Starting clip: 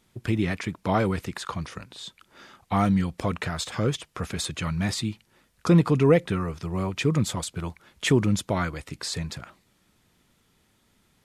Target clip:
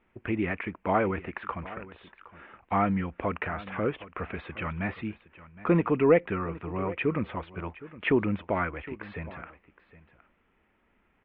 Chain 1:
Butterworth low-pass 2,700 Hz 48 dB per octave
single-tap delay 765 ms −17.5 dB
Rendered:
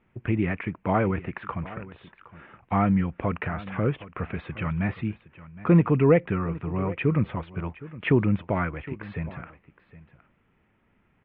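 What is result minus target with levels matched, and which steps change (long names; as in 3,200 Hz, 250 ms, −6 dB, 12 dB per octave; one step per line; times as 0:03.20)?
125 Hz band +5.5 dB
add after Butterworth low-pass: parametric band 130 Hz −12.5 dB 1.1 octaves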